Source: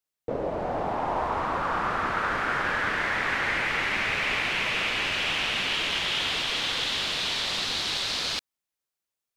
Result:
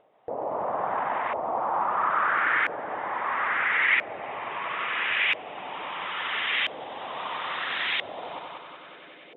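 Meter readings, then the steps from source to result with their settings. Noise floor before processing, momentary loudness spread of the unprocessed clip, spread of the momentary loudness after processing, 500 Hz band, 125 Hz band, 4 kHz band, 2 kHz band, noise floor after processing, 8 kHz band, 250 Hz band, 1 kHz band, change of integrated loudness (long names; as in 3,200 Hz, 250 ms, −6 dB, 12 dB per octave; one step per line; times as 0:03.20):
below −85 dBFS, 4 LU, 15 LU, −1.0 dB, below −10 dB, −7.0 dB, +0.5 dB, −49 dBFS, below −35 dB, −7.5 dB, +2.0 dB, −0.5 dB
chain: Chebyshev low-pass filter 3,700 Hz, order 8
parametric band 1,500 Hz −5 dB 0.38 octaves
feedback echo with a band-pass in the loop 364 ms, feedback 59%, band-pass 320 Hz, level −11 dB
reverb reduction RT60 0.69 s
brickwall limiter −28.5 dBFS, peak gain reduction 10.5 dB
high-pass filter 74 Hz
on a send: echo machine with several playback heads 94 ms, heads first and second, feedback 50%, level −6 dB
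on the sum: auto-filter low-pass saw up 0.75 Hz 600–2,100 Hz
spectral tilt +4 dB per octave
upward compression, threshold −42 dBFS
level +4.5 dB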